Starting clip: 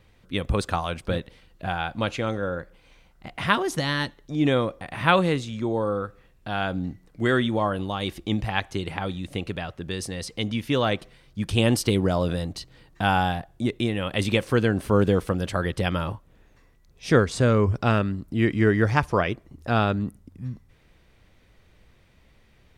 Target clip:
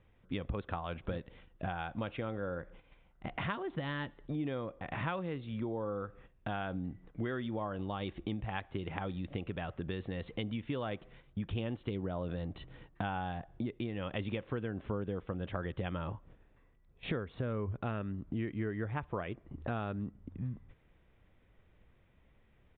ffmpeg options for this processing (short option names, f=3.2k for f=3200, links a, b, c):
-af "aemphasis=mode=reproduction:type=75kf,agate=range=-9dB:threshold=-52dB:ratio=16:detection=peak,acompressor=threshold=-36dB:ratio=6,aresample=8000,aresample=44100,volume=1dB"